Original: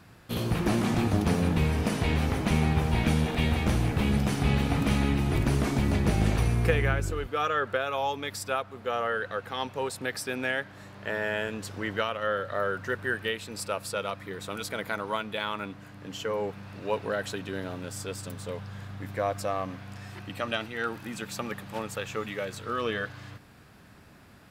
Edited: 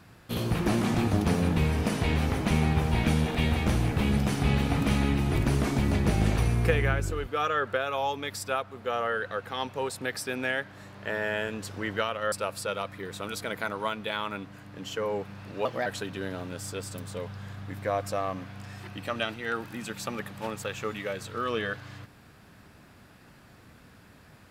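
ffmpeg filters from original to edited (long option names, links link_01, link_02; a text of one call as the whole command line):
ffmpeg -i in.wav -filter_complex "[0:a]asplit=4[link_01][link_02][link_03][link_04];[link_01]atrim=end=12.322[link_05];[link_02]atrim=start=13.598:end=16.934[link_06];[link_03]atrim=start=16.93:end=17.18,asetpts=PTS-STARTPTS,asetrate=52479,aresample=44100[link_07];[link_04]atrim=start=17.176[link_08];[link_05][link_06]acrossfade=duration=0.004:curve1=hsin:curve2=hsin[link_09];[link_09][link_07]acrossfade=duration=0.004:curve1=hsin:curve2=hsin[link_10];[link_10][link_08]acrossfade=duration=0.004:curve1=hsin:curve2=hsin" out.wav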